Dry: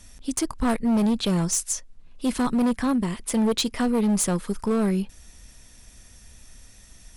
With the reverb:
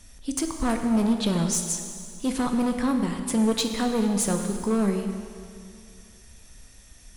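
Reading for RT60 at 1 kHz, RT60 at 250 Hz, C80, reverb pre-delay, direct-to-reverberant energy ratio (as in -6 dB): 2.3 s, 2.3 s, 6.5 dB, 8 ms, 4.5 dB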